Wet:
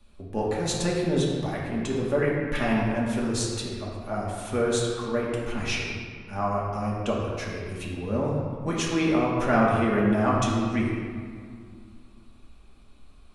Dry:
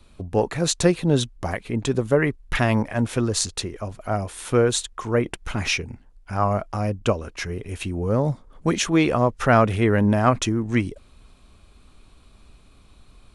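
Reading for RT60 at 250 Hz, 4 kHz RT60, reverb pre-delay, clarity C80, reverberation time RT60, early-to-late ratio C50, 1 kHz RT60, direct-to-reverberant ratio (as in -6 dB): 2.9 s, 1.2 s, 4 ms, 1.5 dB, 2.1 s, 0.0 dB, 2.0 s, -4.5 dB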